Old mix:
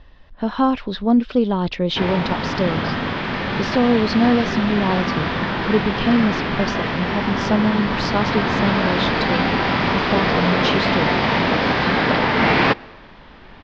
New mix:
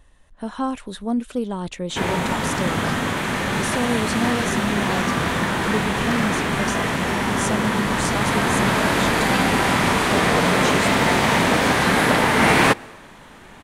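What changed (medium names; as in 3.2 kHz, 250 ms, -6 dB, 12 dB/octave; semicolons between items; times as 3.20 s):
speech -7.5 dB; master: remove Chebyshev low-pass 5.1 kHz, order 5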